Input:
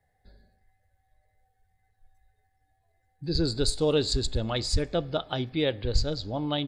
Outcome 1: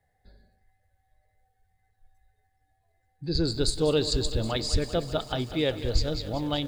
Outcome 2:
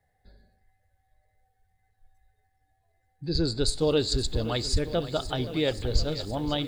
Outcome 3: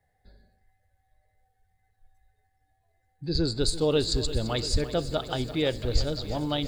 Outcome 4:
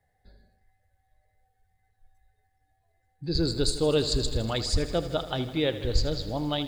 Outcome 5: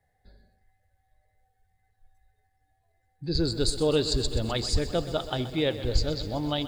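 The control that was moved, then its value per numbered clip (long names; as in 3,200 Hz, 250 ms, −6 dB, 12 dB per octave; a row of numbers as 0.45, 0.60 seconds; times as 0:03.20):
feedback echo at a low word length, delay time: 192, 522, 340, 80, 127 milliseconds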